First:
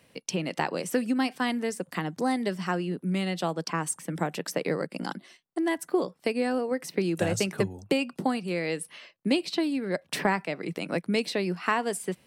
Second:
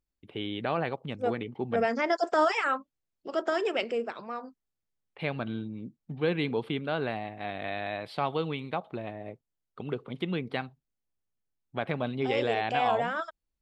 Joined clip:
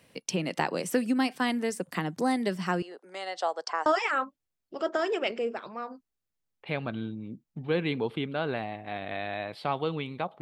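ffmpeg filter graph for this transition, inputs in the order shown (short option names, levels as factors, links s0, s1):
-filter_complex "[0:a]asettb=1/sr,asplit=3[s0][s1][s2];[s0]atrim=end=2.824[s3];[s1]atrim=start=2.82:end=3.86,asetpts=PTS-STARTPTS,afade=t=in:d=0.004:c=qsin,afade=t=out:st=1.036:d=0.004:c=qsin,highpass=f=500:w=0.5412,highpass=f=500:w=1.3066,equalizer=f=760:t=q:w=4:g=5,equalizer=f=2500:t=q:w=4:g=-10,equalizer=f=3600:t=q:w=4:g=-4,lowpass=f=7400:w=0.5412,lowpass=f=7400:w=1.3066[s4];[s2]atrim=start=3.856[s5];[s3][s4]acrossfade=d=0.004:c1=hsin:c2=qsin[s6];[s6][s5]acrossfade=d=0.004:c1=qsin:c2=hsin,apad=whole_dur=10.41,atrim=end=10.41,atrim=end=3.862[s7];[1:a]atrim=start=2.388:end=8.94[s8];[s7][s8]acrossfade=d=0.004:c1=hsin:c2=hsin"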